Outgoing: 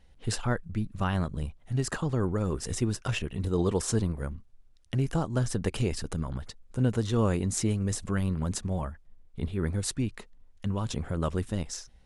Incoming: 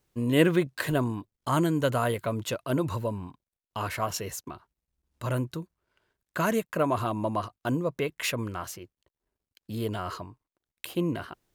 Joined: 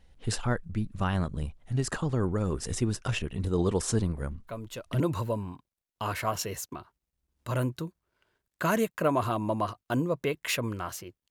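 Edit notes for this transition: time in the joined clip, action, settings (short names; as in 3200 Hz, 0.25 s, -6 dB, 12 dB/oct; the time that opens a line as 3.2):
outgoing
4.47 add incoming from 2.22 s 0.53 s -8.5 dB
5 switch to incoming from 2.75 s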